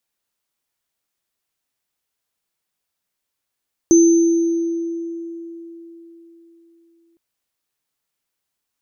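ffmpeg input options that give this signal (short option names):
-f lavfi -i "aevalsrc='0.447*pow(10,-3*t/3.94)*sin(2*PI*335*t)+0.15*pow(10,-3*t/1.53)*sin(2*PI*6170*t)':d=3.26:s=44100"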